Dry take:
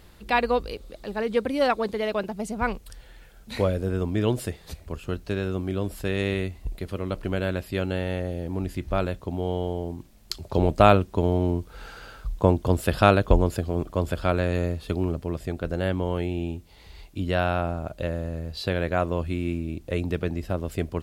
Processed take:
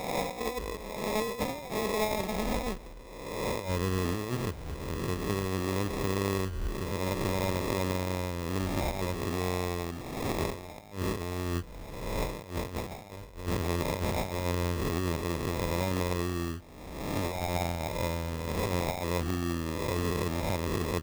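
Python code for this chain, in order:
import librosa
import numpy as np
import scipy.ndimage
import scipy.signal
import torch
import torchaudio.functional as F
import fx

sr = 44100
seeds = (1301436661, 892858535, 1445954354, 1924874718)

y = fx.spec_swells(x, sr, rise_s=1.26)
y = fx.over_compress(y, sr, threshold_db=-24.0, ratio=-0.5)
y = fx.sample_hold(y, sr, seeds[0], rate_hz=1500.0, jitter_pct=0)
y = y * 10.0 ** (-6.5 / 20.0)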